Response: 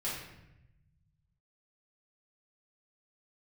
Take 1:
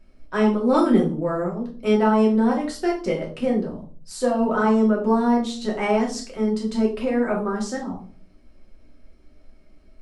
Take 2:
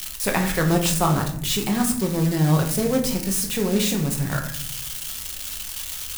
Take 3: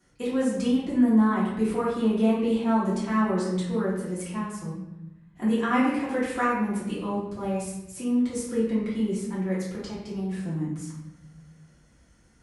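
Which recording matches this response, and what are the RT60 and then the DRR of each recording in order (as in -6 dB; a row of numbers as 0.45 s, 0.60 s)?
3; 0.40 s, 0.65 s, 0.90 s; -3.0 dB, 2.0 dB, -9.0 dB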